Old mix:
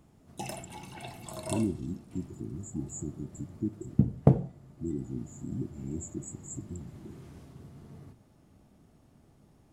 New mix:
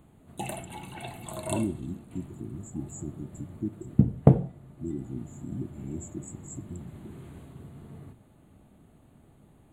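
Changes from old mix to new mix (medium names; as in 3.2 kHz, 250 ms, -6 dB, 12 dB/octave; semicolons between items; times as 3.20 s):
background +3.5 dB; master: add Butterworth band-stop 5.4 kHz, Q 1.8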